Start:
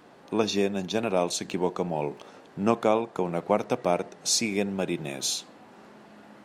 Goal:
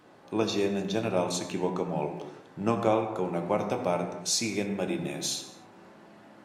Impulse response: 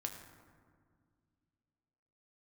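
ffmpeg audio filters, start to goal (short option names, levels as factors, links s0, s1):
-filter_complex "[1:a]atrim=start_sample=2205,afade=t=out:st=0.38:d=0.01,atrim=end_sample=17199,asetrate=48510,aresample=44100[s0];[0:a][s0]afir=irnorm=-1:irlink=0"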